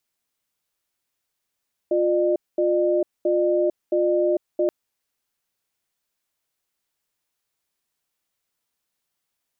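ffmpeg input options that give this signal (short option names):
-f lavfi -i "aevalsrc='0.1*(sin(2*PI*353*t)+sin(2*PI*604*t))*clip(min(mod(t,0.67),0.45-mod(t,0.67))/0.005,0,1)':d=2.78:s=44100"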